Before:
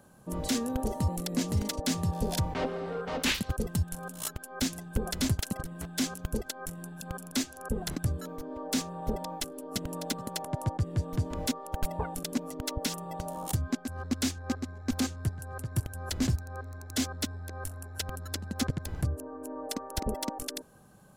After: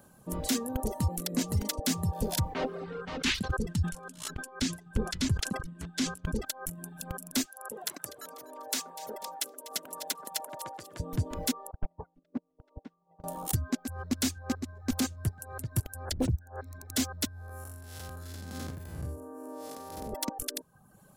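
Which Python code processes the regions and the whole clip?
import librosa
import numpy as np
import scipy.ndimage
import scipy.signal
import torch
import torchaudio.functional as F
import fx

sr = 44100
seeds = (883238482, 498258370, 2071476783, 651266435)

y = fx.chain(x, sr, fx.lowpass(hz=6300.0, slope=12),
    fx.peak_eq(hz=670.0, db=-7.0, octaves=0.91),
    fx.sustainer(db_per_s=100.0), at=(2.84, 6.45))
y = fx.chain(y, sr, fx.highpass(hz=560.0, slope=12),
    fx.echo_alternate(ms=123, hz=1600.0, feedback_pct=66, wet_db=-10.0), at=(7.46, 11.0))
y = fx.chain(y, sr, fx.lowpass(hz=1100.0, slope=12),
    fx.upward_expand(threshold_db=-40.0, expansion=2.5), at=(11.71, 13.24))
y = fx.chain(y, sr, fx.envelope_sharpen(power=1.5),
    fx.peak_eq(hz=570.0, db=3.5, octaves=1.7),
    fx.doppler_dist(depth_ms=0.82), at=(16.05, 16.61))
y = fx.chain(y, sr, fx.spec_blur(span_ms=181.0),
    fx.highpass(hz=62.0, slope=12), at=(17.28, 20.13))
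y = fx.dereverb_blind(y, sr, rt60_s=0.64)
y = fx.high_shelf(y, sr, hz=11000.0, db=9.0)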